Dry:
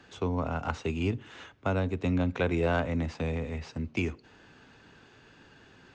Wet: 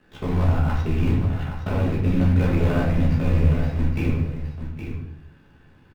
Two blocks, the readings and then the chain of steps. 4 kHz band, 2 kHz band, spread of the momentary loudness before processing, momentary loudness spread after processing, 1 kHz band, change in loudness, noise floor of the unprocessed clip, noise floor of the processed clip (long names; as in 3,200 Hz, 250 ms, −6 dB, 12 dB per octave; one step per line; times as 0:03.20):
+2.5 dB, +2.0 dB, 9 LU, 13 LU, +3.0 dB, +8.5 dB, −57 dBFS, −54 dBFS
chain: one scale factor per block 3 bits
noise gate −52 dBFS, range −10 dB
in parallel at +2 dB: output level in coarse steps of 23 dB
on the sum: soft clipping −21.5 dBFS, distortion −16 dB
amplitude modulation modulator 66 Hz, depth 70%
bass and treble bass +9 dB, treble −14 dB
single-tap delay 817 ms −9 dB
rectangular room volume 120 cubic metres, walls mixed, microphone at 1.4 metres